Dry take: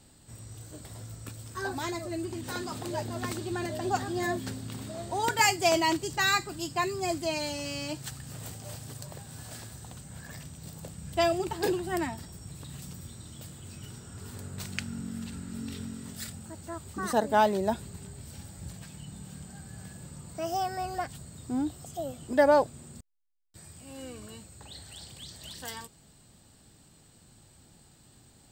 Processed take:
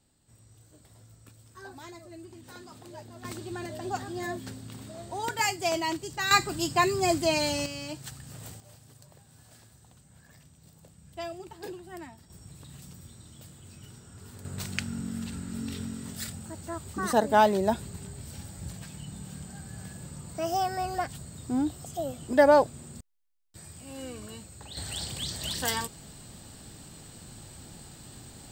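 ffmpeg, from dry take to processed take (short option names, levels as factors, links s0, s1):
-af "asetnsamples=n=441:p=0,asendcmd='3.25 volume volume -4dB;6.31 volume volume 5.5dB;7.66 volume volume -2.5dB;8.6 volume volume -12dB;12.3 volume volume -4.5dB;14.45 volume volume 2.5dB;24.77 volume volume 10.5dB',volume=0.266"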